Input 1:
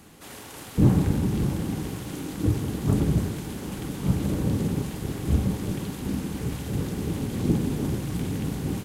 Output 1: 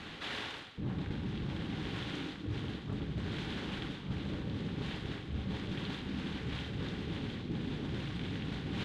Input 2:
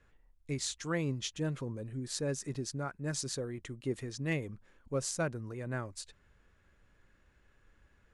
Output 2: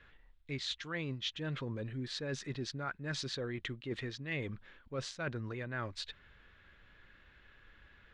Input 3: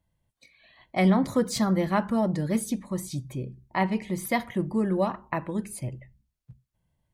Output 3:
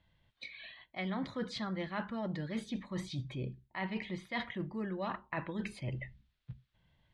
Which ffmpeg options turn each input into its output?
ffmpeg -i in.wav -af "lowpass=frequency=3600:width_type=q:width=2.9,equalizer=frequency=1700:width_type=o:width=1.1:gain=6.5,areverse,acompressor=threshold=-38dB:ratio=8,areverse,volume=2.5dB" out.wav

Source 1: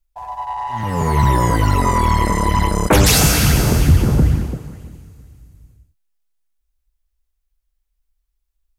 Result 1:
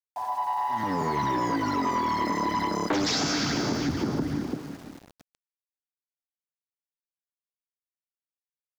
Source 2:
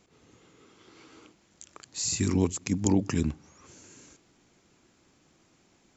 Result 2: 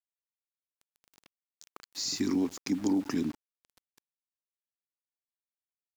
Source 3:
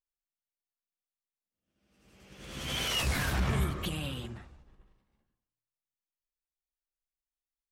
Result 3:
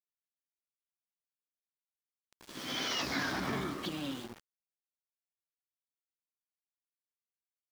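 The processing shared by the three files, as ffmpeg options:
ffmpeg -i in.wav -af "highpass=250,equalizer=frequency=280:width_type=q:width=4:gain=9,equalizer=frequency=500:width_type=q:width=4:gain=-4,equalizer=frequency=2700:width_type=q:width=4:gain=-8,equalizer=frequency=5100:width_type=q:width=4:gain=4,lowpass=frequency=5800:width=0.5412,lowpass=frequency=5800:width=1.3066,aresample=16000,asoftclip=type=tanh:threshold=-11.5dB,aresample=44100,acompressor=threshold=-25dB:ratio=4,aeval=exprs='val(0)*gte(abs(val(0)),0.00668)':channel_layout=same" out.wav

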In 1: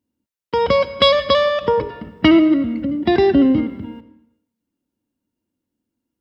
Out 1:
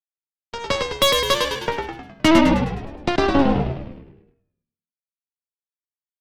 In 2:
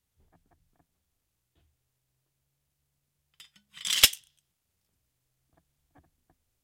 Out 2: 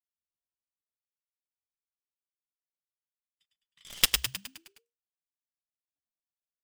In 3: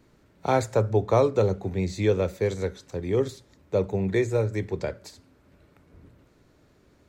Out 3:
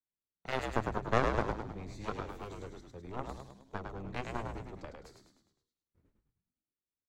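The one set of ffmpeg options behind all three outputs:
ffmpeg -i in.wav -filter_complex "[0:a]agate=range=-31dB:threshold=-49dB:ratio=16:detection=peak,aeval=exprs='0.891*(cos(1*acos(clip(val(0)/0.891,-1,1)))-cos(1*PI/2))+0.1*(cos(4*acos(clip(val(0)/0.891,-1,1)))-cos(4*PI/2))+0.158*(cos(7*acos(clip(val(0)/0.891,-1,1)))-cos(7*PI/2))':channel_layout=same,asplit=2[link_01][link_02];[link_02]asplit=7[link_03][link_04][link_05][link_06][link_07][link_08][link_09];[link_03]adelay=104,afreqshift=-67,volume=-4dB[link_10];[link_04]adelay=208,afreqshift=-134,volume=-9.8dB[link_11];[link_05]adelay=312,afreqshift=-201,volume=-15.7dB[link_12];[link_06]adelay=416,afreqshift=-268,volume=-21.5dB[link_13];[link_07]adelay=520,afreqshift=-335,volume=-27.4dB[link_14];[link_08]adelay=624,afreqshift=-402,volume=-33.2dB[link_15];[link_09]adelay=728,afreqshift=-469,volume=-39.1dB[link_16];[link_10][link_11][link_12][link_13][link_14][link_15][link_16]amix=inputs=7:normalize=0[link_17];[link_01][link_17]amix=inputs=2:normalize=0,volume=-4dB" out.wav

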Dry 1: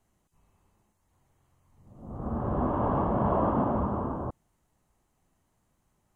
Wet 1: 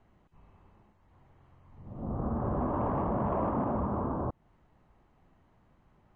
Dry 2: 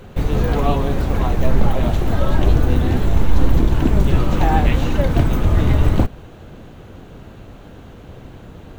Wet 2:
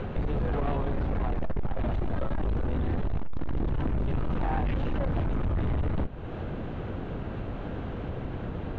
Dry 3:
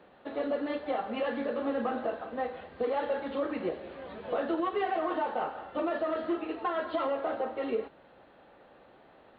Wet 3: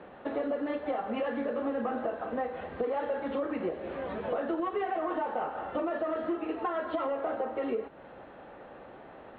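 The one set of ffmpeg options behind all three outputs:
ffmpeg -i in.wav -filter_complex "[0:a]asplit=2[link_01][link_02];[link_02]acontrast=69,volume=-2.5dB[link_03];[link_01][link_03]amix=inputs=2:normalize=0,asoftclip=type=tanh:threshold=-8.5dB,acompressor=threshold=-32dB:ratio=3,lowpass=3100,aemphasis=mode=reproduction:type=cd" out.wav

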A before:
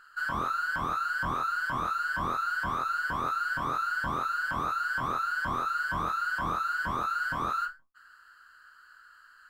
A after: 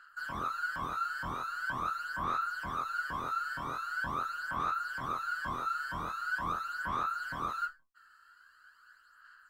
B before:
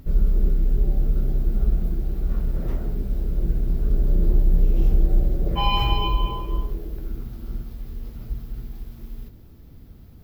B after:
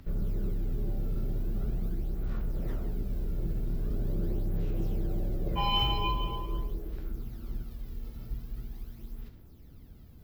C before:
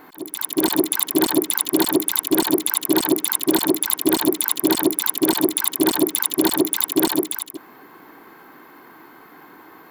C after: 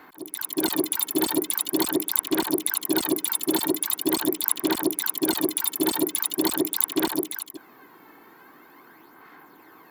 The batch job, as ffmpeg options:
ffmpeg -i in.wav -filter_complex "[0:a]acrossover=split=100|1100[link_01][link_02][link_03];[link_01]volume=22.5dB,asoftclip=hard,volume=-22.5dB[link_04];[link_03]aphaser=in_gain=1:out_gain=1:delay=2.3:decay=0.56:speed=0.43:type=sinusoidal[link_05];[link_04][link_02][link_05]amix=inputs=3:normalize=0,volume=-6dB" out.wav

